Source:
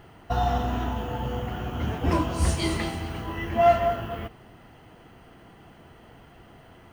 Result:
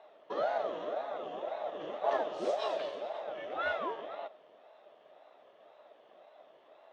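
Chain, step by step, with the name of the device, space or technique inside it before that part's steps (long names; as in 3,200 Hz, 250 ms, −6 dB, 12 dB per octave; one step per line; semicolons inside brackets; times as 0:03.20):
voice changer toy (ring modulator whose carrier an LFO sweeps 500 Hz, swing 55%, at 1.9 Hz; loudspeaker in its box 550–4,900 Hz, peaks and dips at 620 Hz +10 dB, 960 Hz −5 dB, 1,500 Hz −8 dB, 2,300 Hz −9 dB, 4,800 Hz −7 dB)
level −4.5 dB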